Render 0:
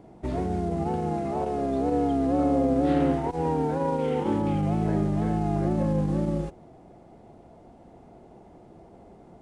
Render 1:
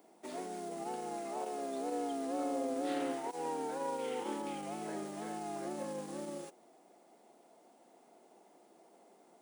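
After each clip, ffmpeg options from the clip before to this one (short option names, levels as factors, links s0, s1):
-af "highpass=f=210:w=0.5412,highpass=f=210:w=1.3066,aemphasis=mode=production:type=riaa,volume=0.376"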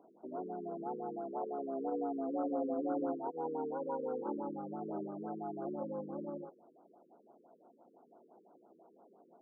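-af "afftfilt=real='re*lt(b*sr/1024,480*pow(1600/480,0.5+0.5*sin(2*PI*5.9*pts/sr)))':imag='im*lt(b*sr/1024,480*pow(1600/480,0.5+0.5*sin(2*PI*5.9*pts/sr)))':win_size=1024:overlap=0.75,volume=1.12"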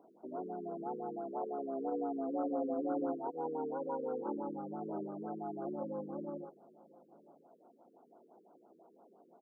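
-af "aecho=1:1:996:0.0631"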